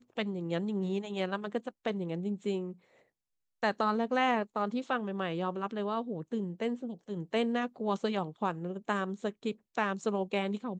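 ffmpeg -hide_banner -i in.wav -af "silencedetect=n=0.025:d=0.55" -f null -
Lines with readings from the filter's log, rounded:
silence_start: 2.67
silence_end: 3.63 | silence_duration: 0.96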